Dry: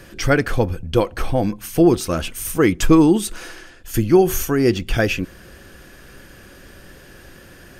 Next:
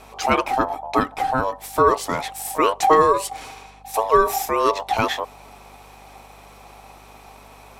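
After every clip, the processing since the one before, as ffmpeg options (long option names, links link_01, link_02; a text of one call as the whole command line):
ffmpeg -i in.wav -af "aeval=exprs='val(0)*sin(2*PI*780*n/s)':channel_layout=same,aeval=exprs='val(0)+0.00316*(sin(2*PI*50*n/s)+sin(2*PI*2*50*n/s)/2+sin(2*PI*3*50*n/s)/3+sin(2*PI*4*50*n/s)/4+sin(2*PI*5*50*n/s)/5)':channel_layout=same" out.wav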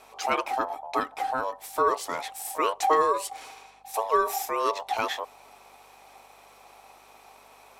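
ffmpeg -i in.wav -af "bass=frequency=250:gain=-15,treble=frequency=4000:gain=1,volume=-6.5dB" out.wav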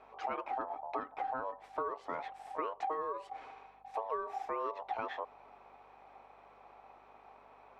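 ffmpeg -i in.wav -af "lowpass=1700,acompressor=threshold=-29dB:ratio=12,volume=-4dB" out.wav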